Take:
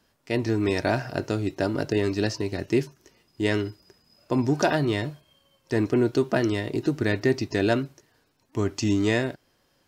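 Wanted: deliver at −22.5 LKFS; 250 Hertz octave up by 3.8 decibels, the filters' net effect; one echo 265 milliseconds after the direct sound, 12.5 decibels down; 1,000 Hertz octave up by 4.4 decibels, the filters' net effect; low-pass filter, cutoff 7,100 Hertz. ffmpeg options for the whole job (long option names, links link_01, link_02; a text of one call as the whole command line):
ffmpeg -i in.wav -af "lowpass=7100,equalizer=frequency=250:width_type=o:gain=4.5,equalizer=frequency=1000:width_type=o:gain=6,aecho=1:1:265:0.237,volume=0.5dB" out.wav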